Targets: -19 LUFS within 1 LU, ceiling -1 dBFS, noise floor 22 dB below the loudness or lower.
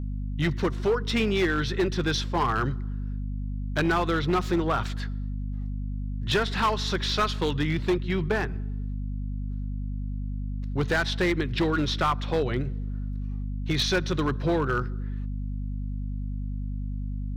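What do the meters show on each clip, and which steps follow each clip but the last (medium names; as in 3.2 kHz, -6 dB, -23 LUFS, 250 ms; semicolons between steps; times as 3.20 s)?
clipped samples 1.4%; clipping level -18.5 dBFS; hum 50 Hz; highest harmonic 250 Hz; hum level -29 dBFS; loudness -28.0 LUFS; peak level -18.5 dBFS; loudness target -19.0 LUFS
-> clip repair -18.5 dBFS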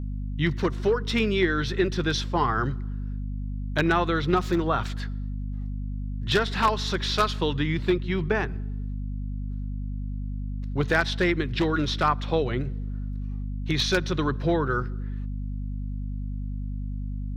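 clipped samples 0.0%; hum 50 Hz; highest harmonic 250 Hz; hum level -28 dBFS
-> hum notches 50/100/150/200/250 Hz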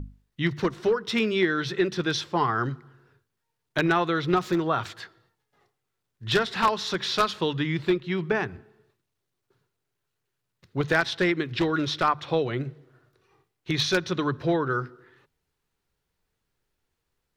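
hum not found; loudness -26.0 LUFS; peak level -8.5 dBFS; loudness target -19.0 LUFS
-> trim +7 dB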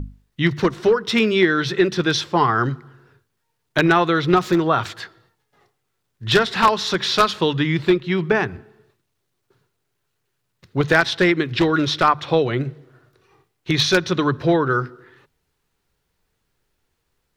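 loudness -19.0 LUFS; peak level -1.5 dBFS; noise floor -74 dBFS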